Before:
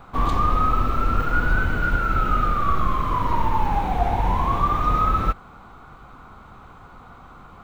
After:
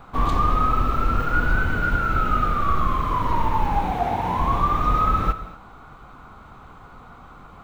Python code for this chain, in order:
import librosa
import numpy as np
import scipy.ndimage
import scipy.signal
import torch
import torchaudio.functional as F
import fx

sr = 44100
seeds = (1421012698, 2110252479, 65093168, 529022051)

y = fx.highpass(x, sr, hz=110.0, slope=12, at=(3.91, 4.39))
y = fx.rev_gated(y, sr, seeds[0], gate_ms=270, shape='flat', drr_db=11.5)